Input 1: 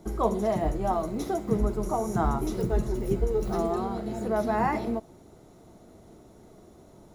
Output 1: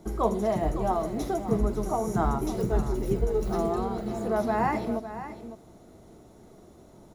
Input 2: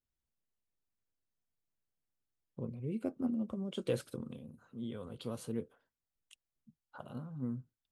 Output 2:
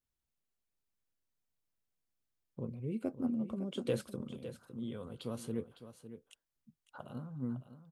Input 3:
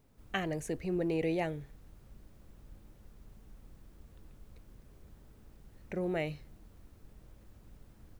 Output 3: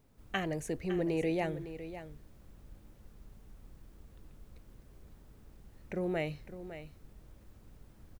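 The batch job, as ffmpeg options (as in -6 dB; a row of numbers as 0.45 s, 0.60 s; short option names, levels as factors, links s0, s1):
-af "aecho=1:1:557:0.251"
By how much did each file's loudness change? 0.0 LU, +0.5 LU, -1.0 LU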